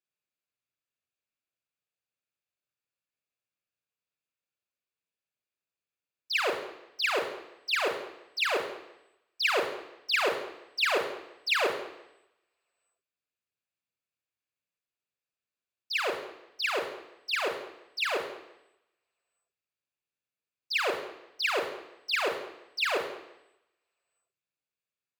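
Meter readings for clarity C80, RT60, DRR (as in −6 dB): 10.0 dB, 0.85 s, 5.0 dB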